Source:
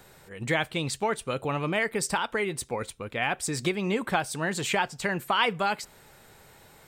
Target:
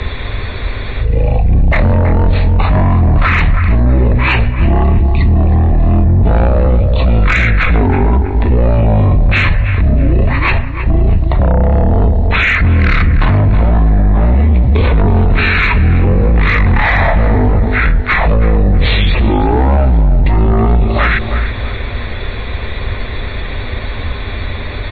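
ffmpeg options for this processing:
-filter_complex "[0:a]asetrate=12172,aresample=44100,lowshelf=f=110:t=q:w=3:g=9.5,asoftclip=type=tanh:threshold=0.168,equalizer=f=1800:w=3.6:g=7.5,acrossover=split=140[s0][s1];[s1]acompressor=threshold=0.0178:ratio=10[s2];[s0][s2]amix=inputs=2:normalize=0,lowpass=f=8300:w=0.5412,lowpass=f=8300:w=1.3066,asplit=2[s3][s4];[s4]adelay=322,lowpass=f=1700:p=1,volume=0.282,asplit=2[s5][s6];[s6]adelay=322,lowpass=f=1700:p=1,volume=0.42,asplit=2[s7][s8];[s8]adelay=322,lowpass=f=1700:p=1,volume=0.42,asplit=2[s9][s10];[s10]adelay=322,lowpass=f=1700:p=1,volume=0.42[s11];[s5][s7][s9][s11]amix=inputs=4:normalize=0[s12];[s3][s12]amix=inputs=2:normalize=0,apsyclip=53.1,volume=0.501"

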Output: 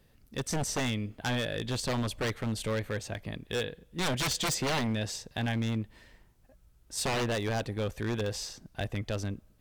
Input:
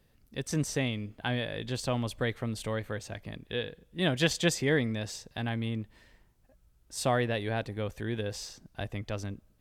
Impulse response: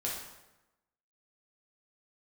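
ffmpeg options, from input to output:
-af "aeval=exprs='0.0447*(abs(mod(val(0)/0.0447+3,4)-2)-1)':c=same,volume=1.41"

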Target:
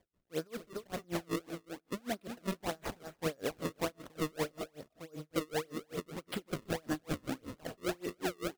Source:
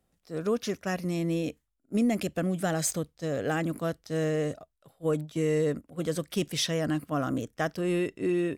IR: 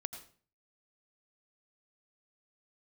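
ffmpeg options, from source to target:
-filter_complex "[0:a]bass=f=250:g=-8,treble=f=4000:g=-11,acompressor=threshold=0.0126:ratio=6,acrusher=samples=32:mix=1:aa=0.000001:lfo=1:lforange=51.2:lforate=1.7,aecho=1:1:294:0.355,asplit=2[s0][s1];[1:a]atrim=start_sample=2205[s2];[s1][s2]afir=irnorm=-1:irlink=0,volume=0.75[s3];[s0][s3]amix=inputs=2:normalize=0,aeval=exprs='val(0)*pow(10,-33*(0.5-0.5*cos(2*PI*5.2*n/s))/20)':c=same,volume=1.68"

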